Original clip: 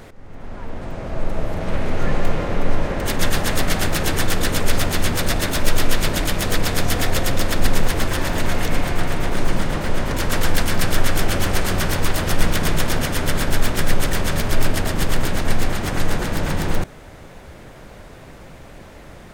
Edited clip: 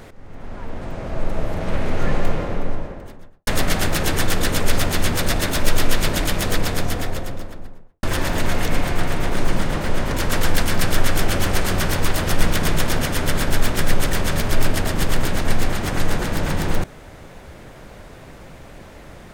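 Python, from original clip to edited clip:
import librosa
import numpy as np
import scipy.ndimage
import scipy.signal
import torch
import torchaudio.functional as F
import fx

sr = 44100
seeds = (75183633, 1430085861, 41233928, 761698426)

y = fx.studio_fade_out(x, sr, start_s=2.08, length_s=1.39)
y = fx.studio_fade_out(y, sr, start_s=6.34, length_s=1.69)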